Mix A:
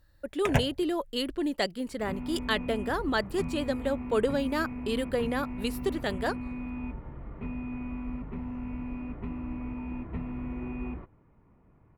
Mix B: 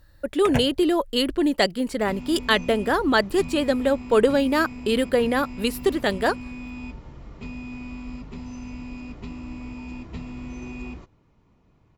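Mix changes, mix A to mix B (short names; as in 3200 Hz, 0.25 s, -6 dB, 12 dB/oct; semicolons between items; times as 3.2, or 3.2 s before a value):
speech +8.5 dB; second sound: remove LPF 2100 Hz 24 dB/oct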